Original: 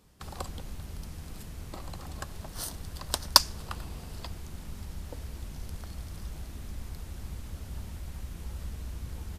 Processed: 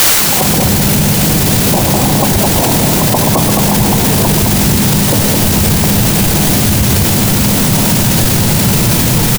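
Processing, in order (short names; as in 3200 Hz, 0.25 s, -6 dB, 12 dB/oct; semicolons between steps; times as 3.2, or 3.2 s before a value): steep low-pass 1000 Hz 72 dB/oct; low shelf 160 Hz +9 dB; spectral gate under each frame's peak -10 dB weak; AGC gain up to 13 dB; requantised 6-bit, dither triangular; loudspeakers at several distances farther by 44 m -11 dB, 73 m -5 dB; maximiser +33.5 dB; gain -1 dB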